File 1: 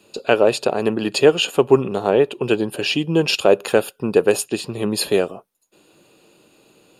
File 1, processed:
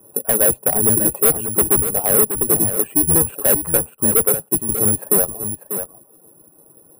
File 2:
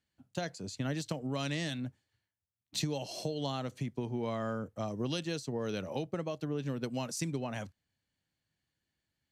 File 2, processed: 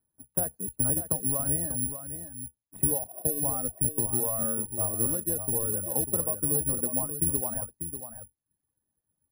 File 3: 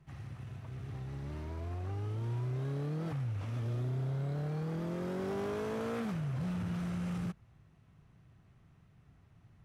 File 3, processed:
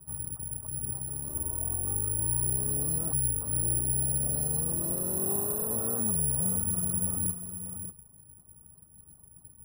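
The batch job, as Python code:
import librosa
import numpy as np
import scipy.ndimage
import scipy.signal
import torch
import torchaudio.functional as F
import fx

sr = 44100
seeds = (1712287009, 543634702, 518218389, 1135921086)

y = fx.octave_divider(x, sr, octaves=1, level_db=-4.0)
y = scipy.signal.sosfilt(scipy.signal.butter(4, 1200.0, 'lowpass', fs=sr, output='sos'), y)
y = fx.dereverb_blind(y, sr, rt60_s=1.0)
y = fx.dynamic_eq(y, sr, hz=390.0, q=7.0, threshold_db=-29.0, ratio=4.0, max_db=-3)
y = np.clip(y, -10.0 ** (-19.0 / 20.0), 10.0 ** (-19.0 / 20.0))
y = y + 10.0 ** (-9.5 / 20.0) * np.pad(y, (int(593 * sr / 1000.0), 0))[:len(y)]
y = (np.kron(scipy.signal.resample_poly(y, 1, 4), np.eye(4)[0]) * 4)[:len(y)]
y = fx.transformer_sat(y, sr, knee_hz=350.0)
y = F.gain(torch.from_numpy(y), 2.5).numpy()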